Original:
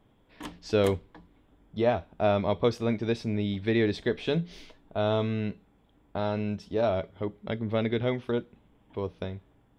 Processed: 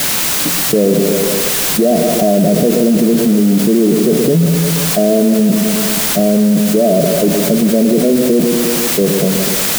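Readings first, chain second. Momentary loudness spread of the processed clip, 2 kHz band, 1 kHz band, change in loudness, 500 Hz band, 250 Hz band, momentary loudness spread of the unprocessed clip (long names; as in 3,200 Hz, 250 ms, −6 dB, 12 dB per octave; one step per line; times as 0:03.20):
1 LU, +15.0 dB, +12.0 dB, +17.5 dB, +15.5 dB, +20.5 dB, 13 LU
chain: converter with a step at zero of −27.5 dBFS
noise gate −28 dBFS, range −25 dB
spectral tilt −4 dB per octave
on a send: echo with a time of its own for lows and highs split 510 Hz, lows 119 ms, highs 167 ms, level −10.5 dB
on the sum: brick-wall band-pass 130–740 Hz
in parallel at −1 dB: output level in coarse steps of 22 dB
on the sum: brickwall limiter −13.5 dBFS, peak gain reduction 10 dB
bit-depth reduction 6 bits, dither triangular
envelope flattener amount 70%
level +7.5 dB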